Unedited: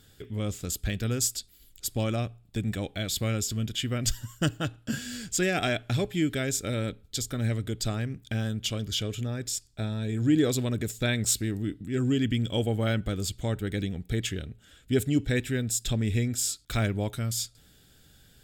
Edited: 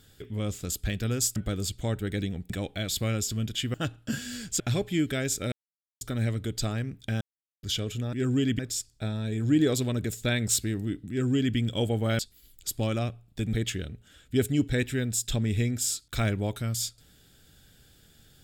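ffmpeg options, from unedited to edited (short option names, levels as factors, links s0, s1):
-filter_complex "[0:a]asplit=13[s0][s1][s2][s3][s4][s5][s6][s7][s8][s9][s10][s11][s12];[s0]atrim=end=1.362[s13];[s1]atrim=start=12.958:end=14.102[s14];[s2]atrim=start=2.698:end=3.942[s15];[s3]atrim=start=4.538:end=5.402[s16];[s4]atrim=start=5.828:end=6.75,asetpts=PTS-STARTPTS,afade=t=out:st=0.918:d=0.004:c=hsin[s17];[s5]atrim=start=6.75:end=7.24,asetpts=PTS-STARTPTS,volume=0[s18];[s6]atrim=start=7.24:end=8.44,asetpts=PTS-STARTPTS,afade=t=in:d=0.004:c=hsin,afade=t=out:st=1.196:d=0.004:c=hsin[s19];[s7]atrim=start=8.44:end=8.86,asetpts=PTS-STARTPTS,volume=0[s20];[s8]atrim=start=8.86:end=9.362,asetpts=PTS-STARTPTS,afade=t=in:d=0.004:c=hsin[s21];[s9]atrim=start=11.868:end=12.332[s22];[s10]atrim=start=9.358:end=12.962[s23];[s11]atrim=start=1.358:end=2.702[s24];[s12]atrim=start=14.098[s25];[s13][s14]acrossfade=d=0.004:c1=hsin:c2=hsin[s26];[s26][s15]acrossfade=d=0.004:c1=hsin:c2=hsin[s27];[s27][s16]acrossfade=d=0.004:c1=hsin:c2=hsin[s28];[s17][s18][s19][s20][s21]concat=n=5:v=0:a=1[s29];[s28][s29]acrossfade=d=0.004:c1=hsin:c2=hsin[s30];[s30][s22]acrossfade=d=0.004:c1=hsin:c2=hsin[s31];[s31][s23]acrossfade=d=0.004:c1=hsin:c2=hsin[s32];[s32][s24]acrossfade=d=0.004:c1=hsin:c2=hsin[s33];[s33][s25]acrossfade=d=0.004:c1=hsin:c2=hsin"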